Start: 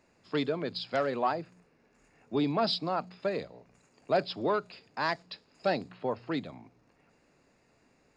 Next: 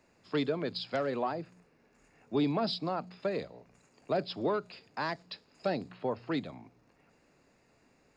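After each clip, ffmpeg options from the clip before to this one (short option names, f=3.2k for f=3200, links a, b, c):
-filter_complex "[0:a]acrossover=split=460[a][b];[b]acompressor=threshold=-33dB:ratio=3[c];[a][c]amix=inputs=2:normalize=0"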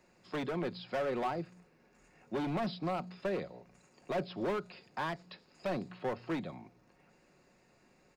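-filter_complex "[0:a]acrossover=split=2800[a][b];[b]acompressor=threshold=-57dB:ratio=4:attack=1:release=60[c];[a][c]amix=inputs=2:normalize=0,volume=31dB,asoftclip=hard,volume=-31dB,aecho=1:1:5.5:0.35"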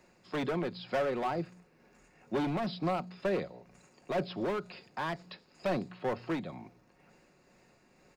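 -af "tremolo=f=2.1:d=0.33,volume=4dB"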